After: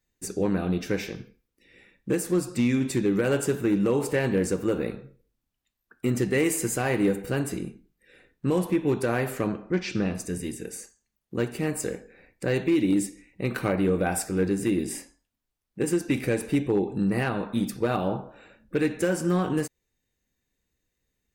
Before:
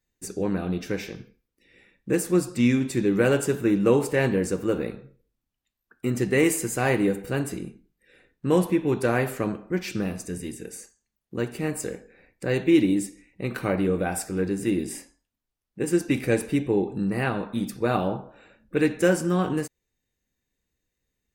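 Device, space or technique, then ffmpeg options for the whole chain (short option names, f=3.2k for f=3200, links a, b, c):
limiter into clipper: -filter_complex "[0:a]alimiter=limit=-15.5dB:level=0:latency=1:release=227,asoftclip=type=hard:threshold=-17.5dB,asettb=1/sr,asplit=3[a][b][c];[a]atrim=end=9.474[d];[b]atrim=start=9.47:end=10.15,asetpts=PTS-STARTPTS,afade=t=in:d=0.004:c=qsin,afade=t=out:st=0.676:d=0.004:c=qsin,lowpass=f=6.5k:w=0.5412,lowpass=f=6.5k:w=1.3066[e];[c]atrim=start=10.146[f];[d][e]acrossfade=d=0.004:c1=hsin:c2=qsin[g];[g][f]acrossfade=d=0.004:c1=qsin:c2=hsin,volume=1.5dB"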